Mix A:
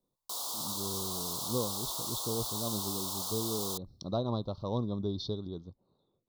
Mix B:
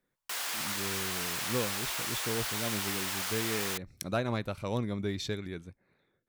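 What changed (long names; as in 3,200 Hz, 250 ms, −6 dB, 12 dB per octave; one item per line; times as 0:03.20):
speech: remove Butterworth low-pass 5,300 Hz 48 dB per octave
master: remove elliptic band-stop filter 1,100–3,700 Hz, stop band 80 dB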